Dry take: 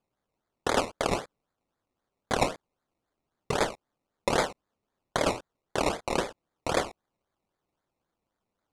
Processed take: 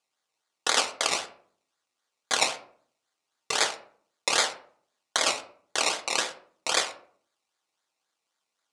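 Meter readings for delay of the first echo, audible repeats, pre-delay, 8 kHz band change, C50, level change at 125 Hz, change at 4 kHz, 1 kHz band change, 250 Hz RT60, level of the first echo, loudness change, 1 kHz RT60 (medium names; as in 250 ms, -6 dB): no echo, no echo, 3 ms, +11.0 dB, 12.5 dB, -18.0 dB, +10.0 dB, -0.5 dB, 0.70 s, no echo, +3.5 dB, 0.50 s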